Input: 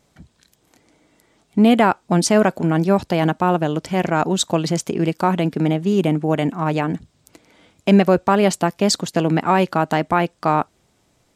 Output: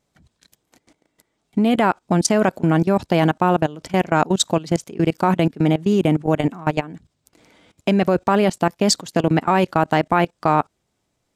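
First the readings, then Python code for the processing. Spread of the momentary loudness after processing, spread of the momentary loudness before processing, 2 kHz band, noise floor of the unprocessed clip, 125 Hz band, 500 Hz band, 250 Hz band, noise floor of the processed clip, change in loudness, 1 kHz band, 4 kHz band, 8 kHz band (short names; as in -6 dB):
5 LU, 7 LU, -0.5 dB, -63 dBFS, -0.5 dB, -1.0 dB, -1.0 dB, -73 dBFS, -0.5 dB, -0.5 dB, 0.0 dB, 0.0 dB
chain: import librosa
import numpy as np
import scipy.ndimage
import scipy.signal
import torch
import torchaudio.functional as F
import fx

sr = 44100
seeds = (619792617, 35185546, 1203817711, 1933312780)

y = fx.level_steps(x, sr, step_db=19)
y = y * 10.0 ** (3.5 / 20.0)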